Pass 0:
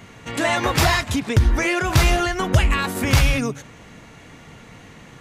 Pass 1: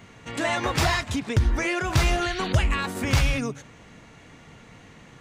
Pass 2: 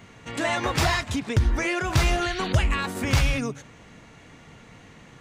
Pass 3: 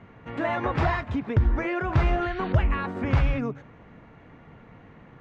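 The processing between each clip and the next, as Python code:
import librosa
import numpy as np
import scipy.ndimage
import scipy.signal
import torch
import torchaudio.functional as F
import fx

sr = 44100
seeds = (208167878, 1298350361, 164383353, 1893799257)

y1 = fx.peak_eq(x, sr, hz=12000.0, db=-9.5, octaves=0.33)
y1 = fx.spec_paint(y1, sr, seeds[0], shape='noise', start_s=2.21, length_s=0.32, low_hz=1300.0, high_hz=4700.0, level_db=-32.0)
y1 = F.gain(torch.from_numpy(y1), -5.0).numpy()
y2 = y1
y3 = scipy.signal.sosfilt(scipy.signal.butter(2, 1600.0, 'lowpass', fs=sr, output='sos'), y2)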